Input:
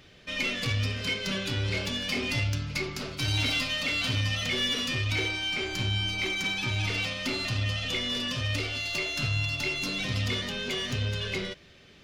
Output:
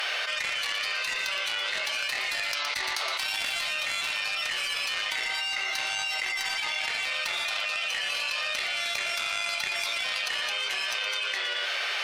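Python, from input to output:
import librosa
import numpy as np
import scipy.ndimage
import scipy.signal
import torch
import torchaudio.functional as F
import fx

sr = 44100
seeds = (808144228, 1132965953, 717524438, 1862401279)

y = scipy.signal.sosfilt(scipy.signal.butter(4, 750.0, 'highpass', fs=sr, output='sos'), x)
y = fx.cheby_harmonics(y, sr, harmonics=(3,), levels_db=(-13,), full_scale_db=-17.0)
y = fx.formant_shift(y, sr, semitones=-2)
y = y + 10.0 ** (-13.0 / 20.0) * np.pad(y, (int(117 * sr / 1000.0), 0))[:len(y)]
y = fx.env_flatten(y, sr, amount_pct=100)
y = F.gain(torch.from_numpy(y), 1.5).numpy()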